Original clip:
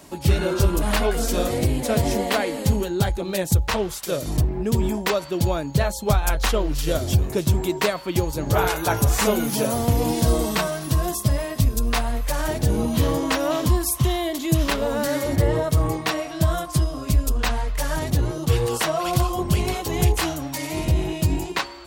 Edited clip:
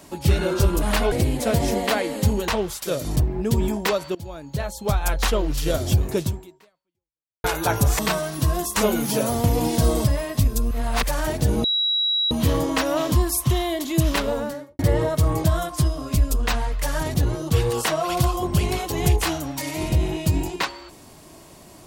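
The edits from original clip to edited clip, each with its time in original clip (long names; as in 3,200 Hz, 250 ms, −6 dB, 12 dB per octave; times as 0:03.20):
0:01.12–0:01.55: remove
0:02.91–0:03.69: remove
0:05.36–0:06.44: fade in, from −20 dB
0:07.43–0:08.65: fade out exponential
0:10.48–0:11.25: move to 0:09.20
0:11.92–0:12.24: reverse
0:12.85: insert tone 3,880 Hz −18.5 dBFS 0.67 s
0:14.77–0:15.33: fade out and dull
0:15.98–0:16.40: remove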